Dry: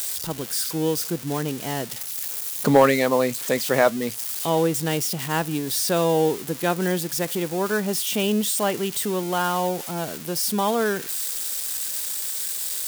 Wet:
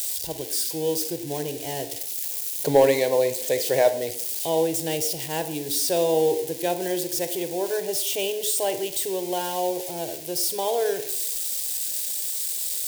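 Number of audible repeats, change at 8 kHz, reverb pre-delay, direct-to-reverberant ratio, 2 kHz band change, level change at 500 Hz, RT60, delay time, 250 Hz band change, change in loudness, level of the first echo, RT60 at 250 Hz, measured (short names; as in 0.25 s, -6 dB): none, 0.0 dB, 33 ms, 10.0 dB, -7.0 dB, 0.0 dB, 0.70 s, none, -6.5 dB, -1.0 dB, none, 0.80 s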